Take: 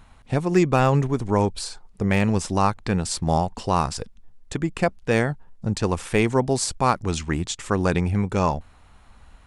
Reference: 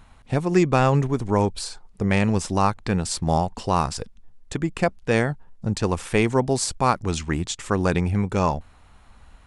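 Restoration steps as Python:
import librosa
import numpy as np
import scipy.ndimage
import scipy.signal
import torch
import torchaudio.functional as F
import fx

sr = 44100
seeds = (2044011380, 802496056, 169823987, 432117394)

y = fx.fix_declip(x, sr, threshold_db=-7.0)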